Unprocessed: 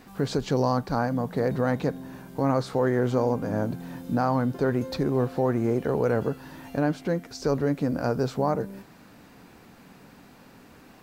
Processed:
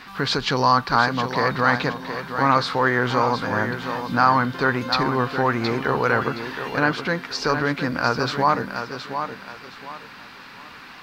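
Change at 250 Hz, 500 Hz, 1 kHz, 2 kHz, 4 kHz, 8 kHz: +0.5 dB, +1.0 dB, +11.0 dB, +15.5 dB, +15.0 dB, +5.5 dB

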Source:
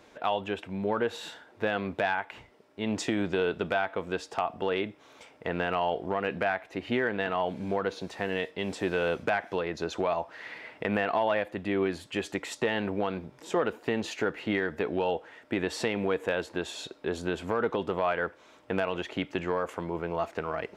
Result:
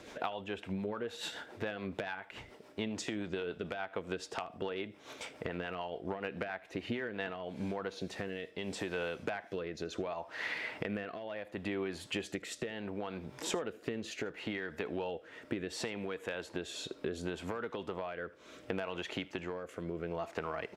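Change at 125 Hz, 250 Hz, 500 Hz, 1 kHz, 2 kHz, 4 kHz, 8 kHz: -6.5 dB, -7.5 dB, -9.5 dB, -11.5 dB, -8.5 dB, -4.5 dB, -2.0 dB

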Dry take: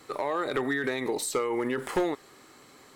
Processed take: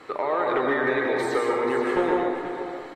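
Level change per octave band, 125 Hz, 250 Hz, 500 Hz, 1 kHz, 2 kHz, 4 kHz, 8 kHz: +1.5 dB, +4.0 dB, +6.5 dB, +7.5 dB, +6.0 dB, 0.0 dB, -10.0 dB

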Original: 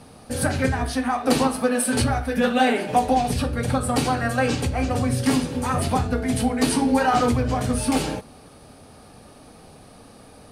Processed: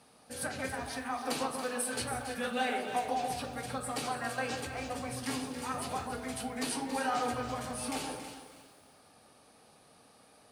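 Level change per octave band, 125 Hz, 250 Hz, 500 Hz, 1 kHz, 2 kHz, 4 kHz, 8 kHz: -21.0 dB, -17.0 dB, -13.5 dB, -11.5 dB, -10.0 dB, -9.5 dB, -9.5 dB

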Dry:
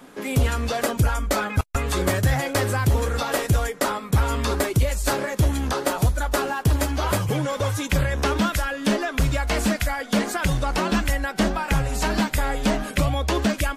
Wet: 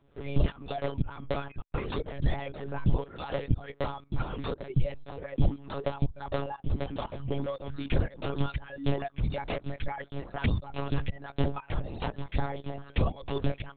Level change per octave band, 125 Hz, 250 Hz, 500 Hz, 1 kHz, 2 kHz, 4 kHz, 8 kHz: -8.5 dB, -10.5 dB, -9.0 dB, -12.0 dB, -15.5 dB, -14.0 dB, under -40 dB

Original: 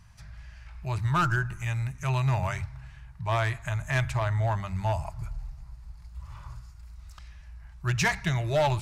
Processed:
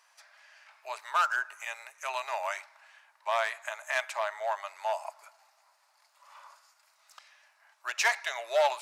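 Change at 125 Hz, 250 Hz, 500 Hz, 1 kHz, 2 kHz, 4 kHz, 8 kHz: under -40 dB, under -30 dB, -0.5 dB, 0.0 dB, 0.0 dB, 0.0 dB, 0.0 dB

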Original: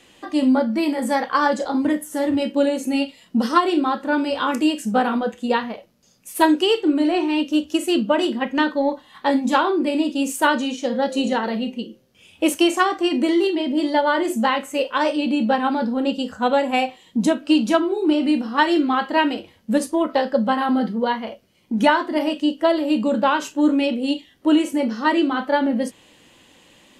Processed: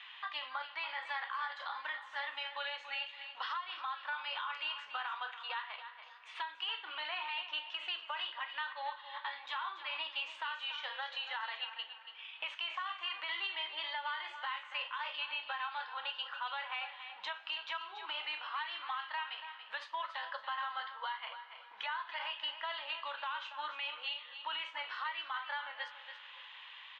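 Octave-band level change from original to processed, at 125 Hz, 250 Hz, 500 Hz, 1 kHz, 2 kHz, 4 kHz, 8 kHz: no reading, under -40 dB, -33.0 dB, -17.5 dB, -12.0 dB, -9.5 dB, under -35 dB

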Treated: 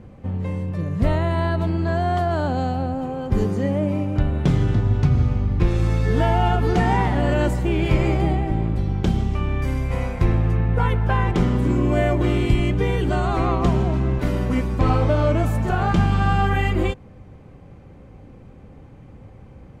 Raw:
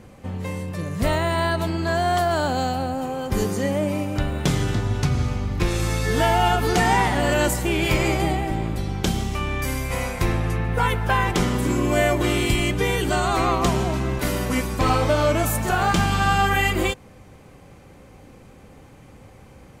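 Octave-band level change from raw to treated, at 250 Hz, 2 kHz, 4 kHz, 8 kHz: +2.0 dB, -5.0 dB, -8.0 dB, under -10 dB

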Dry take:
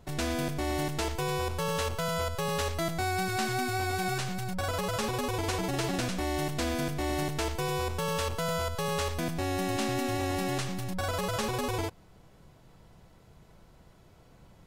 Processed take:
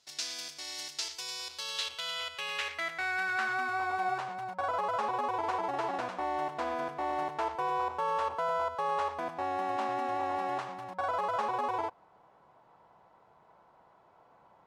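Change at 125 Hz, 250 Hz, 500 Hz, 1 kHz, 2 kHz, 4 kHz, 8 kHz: -21.5 dB, -12.0 dB, -4.5 dB, +3.0 dB, 0.0 dB, -2.5 dB, no reading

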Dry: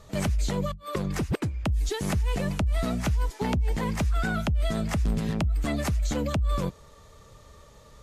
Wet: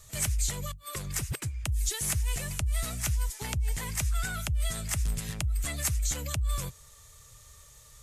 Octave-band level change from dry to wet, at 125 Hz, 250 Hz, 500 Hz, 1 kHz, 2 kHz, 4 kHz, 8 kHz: -4.5 dB, -14.0 dB, -13.0 dB, -8.5 dB, -2.5 dB, +0.5 dB, +9.5 dB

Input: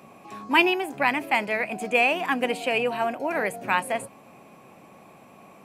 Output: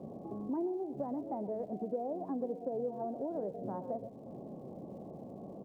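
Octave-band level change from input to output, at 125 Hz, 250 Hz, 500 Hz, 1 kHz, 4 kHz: -3.5 dB, -7.0 dB, -9.5 dB, -17.5 dB, under -40 dB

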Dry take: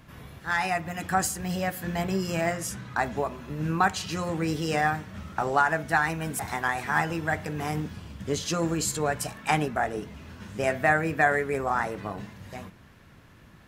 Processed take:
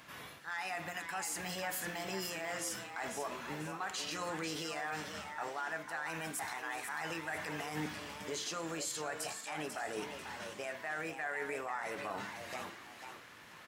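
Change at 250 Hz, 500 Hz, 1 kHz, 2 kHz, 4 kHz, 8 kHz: -14.5 dB, -12.5 dB, -13.5 dB, -11.5 dB, -5.0 dB, -7.0 dB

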